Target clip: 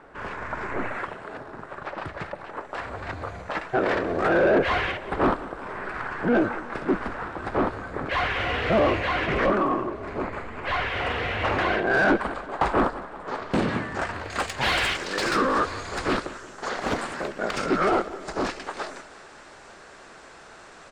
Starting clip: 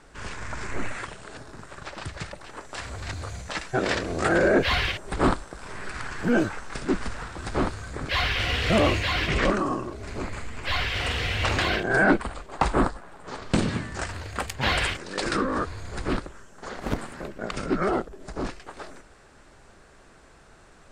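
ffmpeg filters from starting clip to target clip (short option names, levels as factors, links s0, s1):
-filter_complex "[0:a]asetnsamples=n=441:p=0,asendcmd='11.86 equalizer g -3.5;14.3 equalizer g 10.5',equalizer=f=6600:w=0.46:g=-11.5,asplit=2[s0][s1];[s1]highpass=f=720:p=1,volume=10,asoftclip=type=tanh:threshold=0.422[s2];[s0][s2]amix=inputs=2:normalize=0,lowpass=f=1100:p=1,volume=0.501,aecho=1:1:181|362|543|724|905:0.133|0.0707|0.0375|0.0199|0.0105,volume=0.75"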